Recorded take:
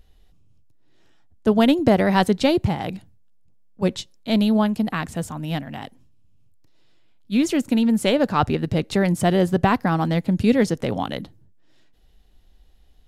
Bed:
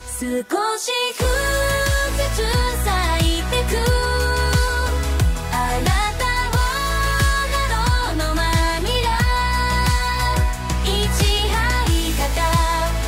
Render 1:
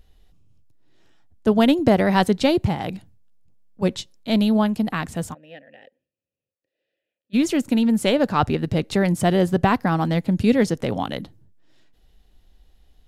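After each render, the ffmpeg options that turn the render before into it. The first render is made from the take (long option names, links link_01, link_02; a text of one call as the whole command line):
ffmpeg -i in.wav -filter_complex "[0:a]asplit=3[link_01][link_02][link_03];[link_01]afade=type=out:start_time=5.33:duration=0.02[link_04];[link_02]asplit=3[link_05][link_06][link_07];[link_05]bandpass=frequency=530:width_type=q:width=8,volume=0dB[link_08];[link_06]bandpass=frequency=1840:width_type=q:width=8,volume=-6dB[link_09];[link_07]bandpass=frequency=2480:width_type=q:width=8,volume=-9dB[link_10];[link_08][link_09][link_10]amix=inputs=3:normalize=0,afade=type=in:start_time=5.33:duration=0.02,afade=type=out:start_time=7.33:duration=0.02[link_11];[link_03]afade=type=in:start_time=7.33:duration=0.02[link_12];[link_04][link_11][link_12]amix=inputs=3:normalize=0" out.wav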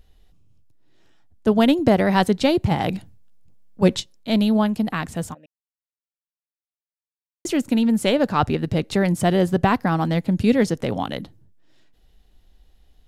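ffmpeg -i in.wav -filter_complex "[0:a]asettb=1/sr,asplit=3[link_01][link_02][link_03];[link_01]atrim=end=2.714[link_04];[link_02]atrim=start=2.71:end=4,asetpts=PTS-STARTPTS,afade=type=in:duration=0.004:curve=qsin,afade=type=out:start_time=1.286:duration=0.004:curve=qsin,acontrast=31[link_05];[link_03]atrim=start=3.996[link_06];[link_04][link_05]acrossfade=duration=0.004:curve1=hsin:curve2=qsin[link_07];[link_07][link_06]acrossfade=duration=0.004:curve1=qsin:curve2=hsin,asplit=3[link_08][link_09][link_10];[link_08]atrim=end=5.46,asetpts=PTS-STARTPTS,afade=type=out:start_time=5.456:duration=0.004:curve=hsin[link_11];[link_09]atrim=start=5.46:end=7.45,asetpts=PTS-STARTPTS,volume=0[link_12];[link_10]atrim=start=7.45,asetpts=PTS-STARTPTS,afade=type=in:duration=0.004:curve=hsin[link_13];[link_11][link_12][link_13]concat=n=3:v=0:a=1" out.wav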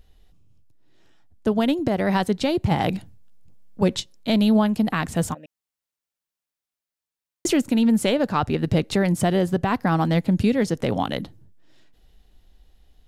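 ffmpeg -i in.wav -af "dynaudnorm=framelen=150:gausssize=21:maxgain=11.5dB,alimiter=limit=-10.5dB:level=0:latency=1:release=386" out.wav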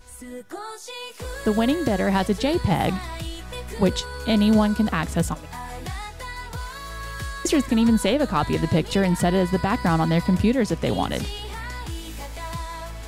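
ffmpeg -i in.wav -i bed.wav -filter_complex "[1:a]volume=-14.5dB[link_01];[0:a][link_01]amix=inputs=2:normalize=0" out.wav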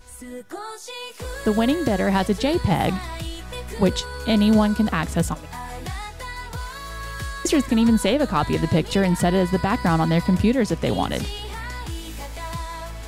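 ffmpeg -i in.wav -af "volume=1dB" out.wav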